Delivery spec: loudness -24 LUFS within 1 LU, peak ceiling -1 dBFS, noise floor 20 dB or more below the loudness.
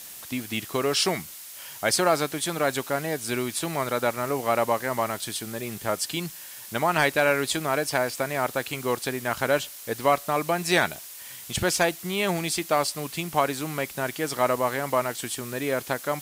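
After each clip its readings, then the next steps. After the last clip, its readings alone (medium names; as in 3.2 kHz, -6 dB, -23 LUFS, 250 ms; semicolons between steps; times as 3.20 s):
noise floor -42 dBFS; noise floor target -46 dBFS; loudness -26.0 LUFS; peak level -8.0 dBFS; loudness target -24.0 LUFS
-> noise reduction 6 dB, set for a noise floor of -42 dBFS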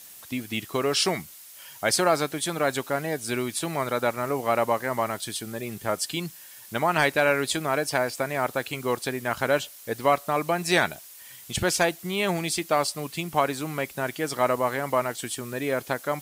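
noise floor -46 dBFS; noise floor target -47 dBFS
-> noise reduction 6 dB, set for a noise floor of -46 dBFS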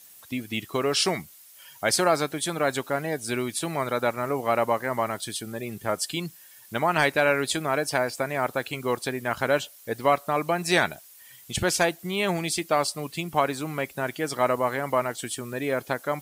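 noise floor -50 dBFS; loudness -26.5 LUFS; peak level -8.0 dBFS; loudness target -24.0 LUFS
-> trim +2.5 dB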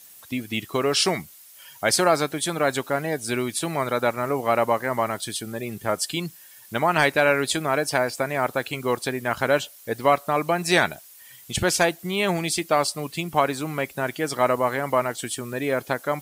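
loudness -24.0 LUFS; peak level -5.5 dBFS; noise floor -48 dBFS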